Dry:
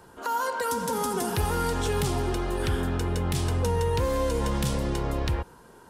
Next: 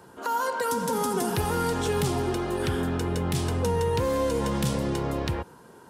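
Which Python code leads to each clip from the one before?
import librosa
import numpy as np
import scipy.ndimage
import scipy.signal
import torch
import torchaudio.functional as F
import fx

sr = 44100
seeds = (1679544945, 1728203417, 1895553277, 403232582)

y = scipy.signal.sosfilt(scipy.signal.butter(2, 110.0, 'highpass', fs=sr, output='sos'), x)
y = fx.low_shelf(y, sr, hz=470.0, db=3.5)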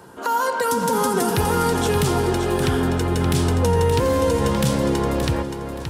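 y = fx.echo_feedback(x, sr, ms=574, feedback_pct=28, wet_db=-8.0)
y = y * 10.0 ** (6.0 / 20.0)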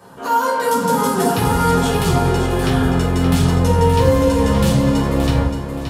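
y = fx.room_shoebox(x, sr, seeds[0], volume_m3=400.0, walls='furnished', distance_m=5.9)
y = y * 10.0 ** (-6.0 / 20.0)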